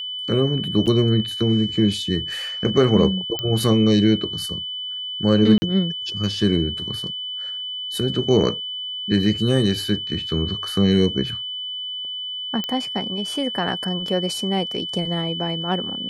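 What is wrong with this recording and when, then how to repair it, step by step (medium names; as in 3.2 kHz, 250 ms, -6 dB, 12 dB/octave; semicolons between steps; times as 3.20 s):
whine 3 kHz -27 dBFS
0.86–0.87 s: dropout 7.2 ms
3.39 s: pop -11 dBFS
5.58–5.62 s: dropout 40 ms
12.64 s: pop -12 dBFS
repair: de-click; band-stop 3 kHz, Q 30; interpolate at 0.86 s, 7.2 ms; interpolate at 5.58 s, 40 ms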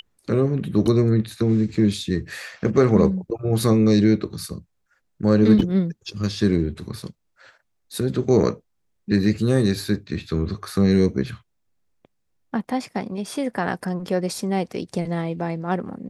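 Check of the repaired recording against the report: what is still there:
whine 3 kHz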